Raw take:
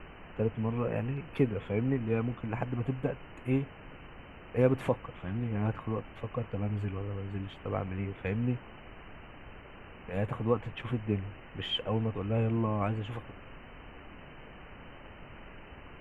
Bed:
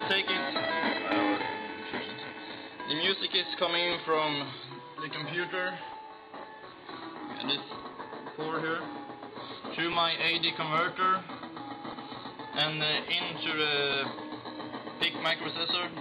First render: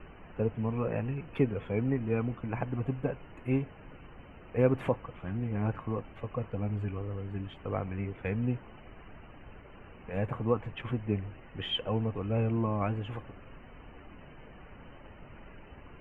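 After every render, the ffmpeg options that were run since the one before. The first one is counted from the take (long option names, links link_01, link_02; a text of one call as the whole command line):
ffmpeg -i in.wav -af "afftdn=noise_reduction=8:noise_floor=-50" out.wav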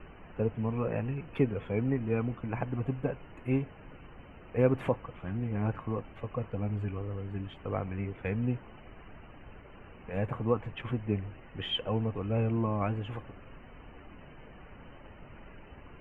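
ffmpeg -i in.wav -af anull out.wav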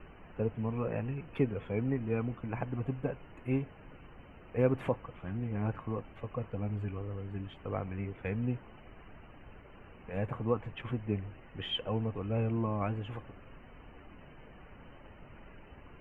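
ffmpeg -i in.wav -af "volume=-2.5dB" out.wav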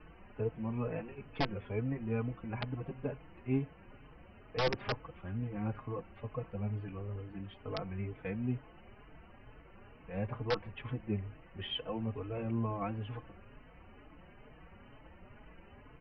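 ffmpeg -i in.wav -filter_complex "[0:a]aresample=11025,aeval=exprs='(mod(9.44*val(0)+1,2)-1)/9.44':channel_layout=same,aresample=44100,asplit=2[link_01][link_02];[link_02]adelay=4.2,afreqshift=2.2[link_03];[link_01][link_03]amix=inputs=2:normalize=1" out.wav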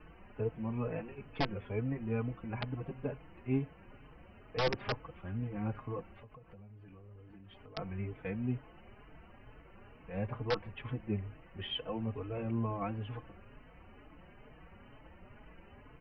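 ffmpeg -i in.wav -filter_complex "[0:a]asettb=1/sr,asplit=3[link_01][link_02][link_03];[link_01]atrim=end=6.134[link_04];[link_02]atrim=start=6.13:end=7.77,asetpts=PTS-STARTPTS,afade=type=in:duration=0.004:curve=qsin,afade=type=out:start_time=1.636:duration=0.004:curve=qsin,acompressor=threshold=-50dB:ratio=12:attack=3.2:release=140:knee=1:detection=peak[link_05];[link_03]atrim=start=7.766[link_06];[link_04][link_05]acrossfade=duration=0.004:curve1=hsin:curve2=qsin[link_07];[link_07][link_06]acrossfade=duration=0.004:curve1=qsin:curve2=hsin" out.wav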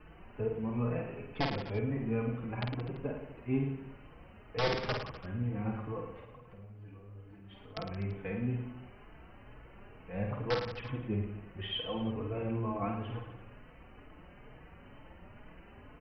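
ffmpeg -i in.wav -af "aecho=1:1:50|107.5|173.6|249.7|337.1:0.631|0.398|0.251|0.158|0.1" out.wav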